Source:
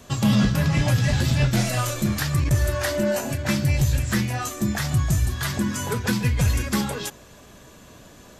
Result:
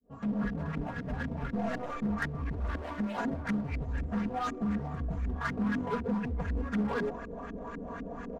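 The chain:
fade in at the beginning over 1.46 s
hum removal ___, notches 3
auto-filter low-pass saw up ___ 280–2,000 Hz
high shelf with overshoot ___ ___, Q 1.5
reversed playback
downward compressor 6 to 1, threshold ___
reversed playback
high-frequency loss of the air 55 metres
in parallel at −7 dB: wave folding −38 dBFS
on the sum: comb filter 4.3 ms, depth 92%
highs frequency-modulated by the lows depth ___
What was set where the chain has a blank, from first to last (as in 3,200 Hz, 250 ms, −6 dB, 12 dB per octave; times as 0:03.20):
110.7 Hz, 4 Hz, 5,000 Hz, +8 dB, −32 dBFS, 0.17 ms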